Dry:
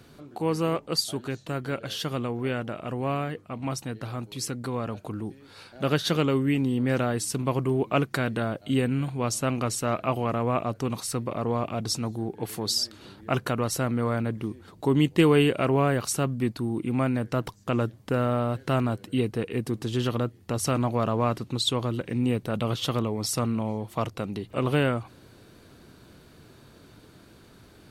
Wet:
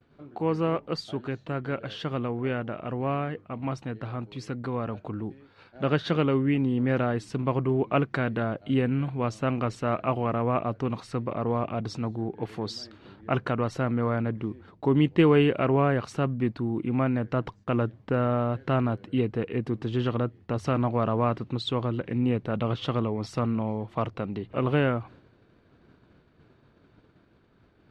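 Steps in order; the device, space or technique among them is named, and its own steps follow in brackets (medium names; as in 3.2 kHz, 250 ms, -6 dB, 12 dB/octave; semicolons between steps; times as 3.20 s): hearing-loss simulation (low-pass 2.6 kHz 12 dB/octave; expander -45 dBFS)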